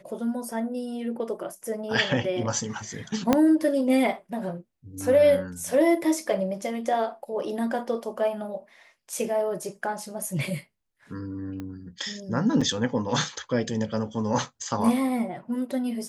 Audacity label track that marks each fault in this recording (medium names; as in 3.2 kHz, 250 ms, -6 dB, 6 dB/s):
3.330000	3.330000	pop -6 dBFS
11.600000	11.600000	pop -23 dBFS
12.610000	12.610000	dropout 4.8 ms